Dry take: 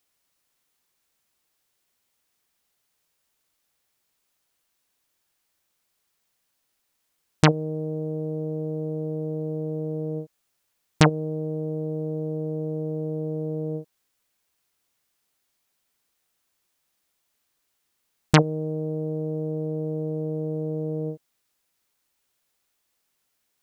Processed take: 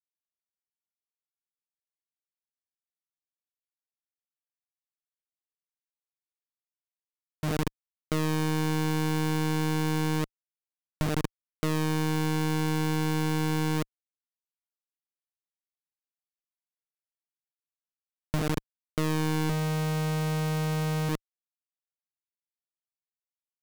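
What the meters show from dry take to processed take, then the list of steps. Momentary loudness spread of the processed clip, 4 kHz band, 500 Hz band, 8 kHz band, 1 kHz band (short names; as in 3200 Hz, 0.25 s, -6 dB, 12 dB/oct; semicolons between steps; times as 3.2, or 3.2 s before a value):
6 LU, -1.0 dB, -6.5 dB, +1.0 dB, -0.5 dB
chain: AGC gain up to 8 dB; feedback echo 77 ms, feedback 56%, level -9.5 dB; Schmitt trigger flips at -18.5 dBFS; power-law curve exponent 2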